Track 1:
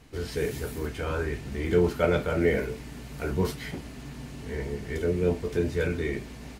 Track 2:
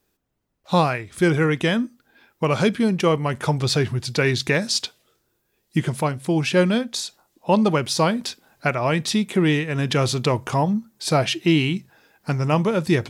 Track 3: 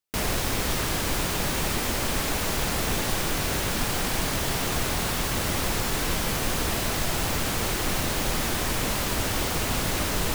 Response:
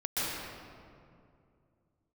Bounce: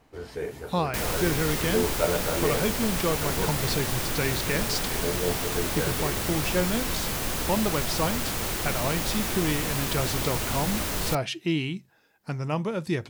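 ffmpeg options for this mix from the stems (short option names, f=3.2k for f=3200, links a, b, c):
-filter_complex "[0:a]equalizer=f=790:w=0.68:g=11,volume=-9.5dB[a];[1:a]volume=-8.5dB[b];[2:a]highshelf=f=10k:g=4.5,adelay=800,volume=-3.5dB[c];[a][b][c]amix=inputs=3:normalize=0"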